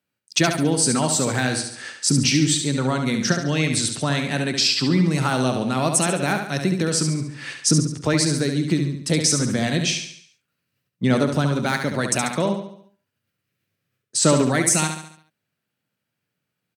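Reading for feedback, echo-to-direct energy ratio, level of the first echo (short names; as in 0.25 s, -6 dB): 47%, -5.5 dB, -6.5 dB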